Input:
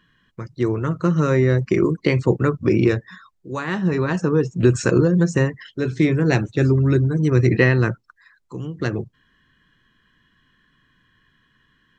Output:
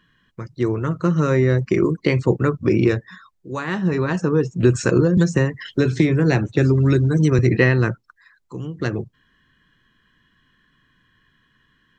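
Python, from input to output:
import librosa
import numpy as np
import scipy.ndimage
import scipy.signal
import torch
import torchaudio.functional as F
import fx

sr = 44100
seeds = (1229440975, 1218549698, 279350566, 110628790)

y = fx.band_squash(x, sr, depth_pct=100, at=(5.17, 7.39))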